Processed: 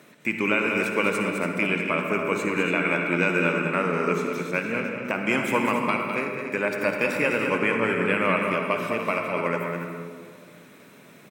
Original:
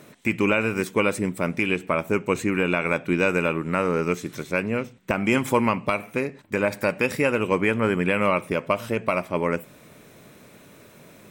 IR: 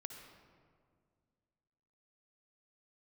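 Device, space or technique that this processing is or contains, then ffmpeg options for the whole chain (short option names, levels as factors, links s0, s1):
stadium PA: -filter_complex "[0:a]highpass=f=140:w=0.5412,highpass=f=140:w=1.3066,equalizer=f=2000:t=o:w=1.8:g=5,aecho=1:1:204.1|285.7:0.447|0.316[s0];[1:a]atrim=start_sample=2205[s1];[s0][s1]afir=irnorm=-1:irlink=0"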